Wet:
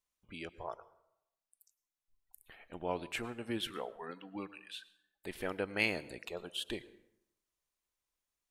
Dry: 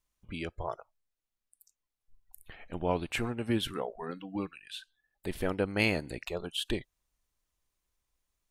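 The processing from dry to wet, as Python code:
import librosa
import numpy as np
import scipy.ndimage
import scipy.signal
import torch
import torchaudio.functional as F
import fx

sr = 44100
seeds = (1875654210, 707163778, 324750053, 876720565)

y = fx.low_shelf(x, sr, hz=170.0, db=-11.5)
y = fx.rev_plate(y, sr, seeds[0], rt60_s=0.82, hf_ratio=0.65, predelay_ms=90, drr_db=18.0)
y = fx.dynamic_eq(y, sr, hz=2100.0, q=1.3, threshold_db=-54.0, ratio=4.0, max_db=4, at=(3.59, 5.86))
y = F.gain(torch.from_numpy(y), -5.0).numpy()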